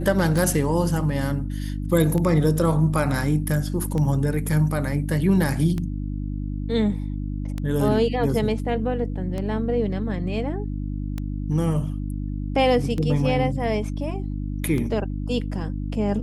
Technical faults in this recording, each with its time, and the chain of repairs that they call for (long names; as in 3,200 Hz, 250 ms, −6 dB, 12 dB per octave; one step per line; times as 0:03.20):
mains hum 50 Hz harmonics 6 −28 dBFS
scratch tick 33 1/3 rpm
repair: click removal
hum removal 50 Hz, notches 6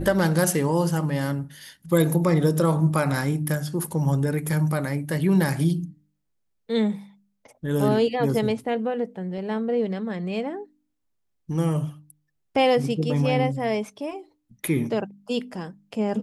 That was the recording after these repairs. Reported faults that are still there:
none of them is left